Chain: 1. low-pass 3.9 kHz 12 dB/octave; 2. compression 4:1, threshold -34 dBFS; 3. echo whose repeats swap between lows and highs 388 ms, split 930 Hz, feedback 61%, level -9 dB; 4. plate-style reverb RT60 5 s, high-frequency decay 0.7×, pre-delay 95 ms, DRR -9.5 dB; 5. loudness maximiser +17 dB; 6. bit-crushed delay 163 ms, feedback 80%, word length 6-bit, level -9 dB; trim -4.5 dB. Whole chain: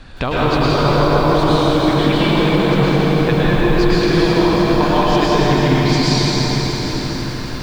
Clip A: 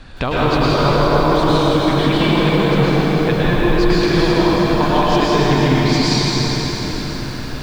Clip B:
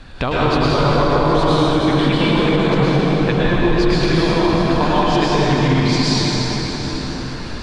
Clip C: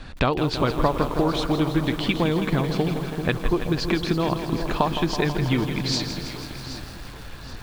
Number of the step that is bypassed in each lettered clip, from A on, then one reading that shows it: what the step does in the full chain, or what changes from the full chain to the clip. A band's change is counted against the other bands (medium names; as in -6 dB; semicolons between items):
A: 3, momentary loudness spread change +1 LU; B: 6, crest factor change -3.0 dB; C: 4, momentary loudness spread change +7 LU